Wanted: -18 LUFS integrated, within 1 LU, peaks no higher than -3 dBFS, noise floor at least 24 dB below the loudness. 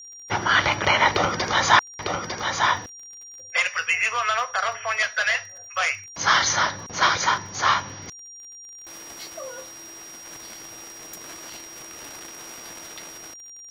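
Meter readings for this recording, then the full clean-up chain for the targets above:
ticks 37/s; steady tone 5700 Hz; tone level -40 dBFS; loudness -22.0 LUFS; peak -3.0 dBFS; loudness target -18.0 LUFS
-> de-click; notch 5700 Hz, Q 30; gain +4 dB; limiter -3 dBFS

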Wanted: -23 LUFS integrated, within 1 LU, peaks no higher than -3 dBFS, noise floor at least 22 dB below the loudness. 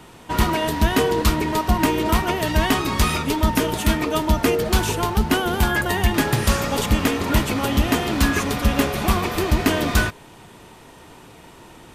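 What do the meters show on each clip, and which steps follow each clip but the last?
loudness -20.5 LUFS; peak -6.5 dBFS; loudness target -23.0 LUFS
-> gain -2.5 dB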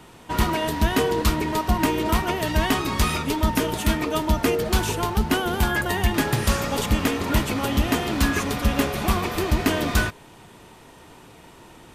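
loudness -23.0 LUFS; peak -9.0 dBFS; noise floor -48 dBFS

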